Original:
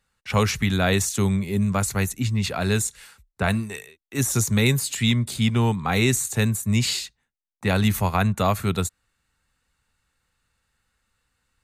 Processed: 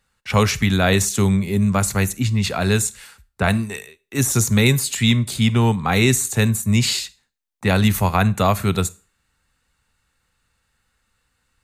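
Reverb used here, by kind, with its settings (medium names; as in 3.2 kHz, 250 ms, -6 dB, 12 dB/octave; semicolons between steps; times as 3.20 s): Schroeder reverb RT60 0.34 s, combs from 31 ms, DRR 19 dB; trim +4 dB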